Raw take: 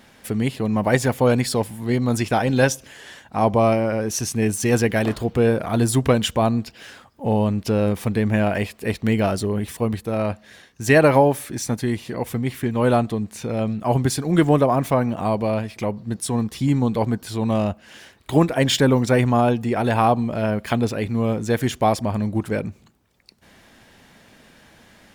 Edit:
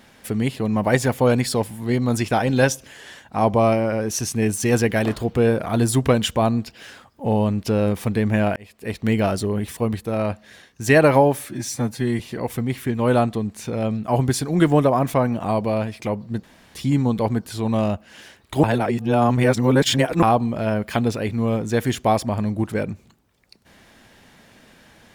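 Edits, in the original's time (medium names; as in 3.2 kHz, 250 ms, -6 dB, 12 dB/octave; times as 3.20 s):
8.56–9.10 s: fade in
11.49–11.96 s: stretch 1.5×
16.20–16.51 s: room tone
18.40–19.99 s: reverse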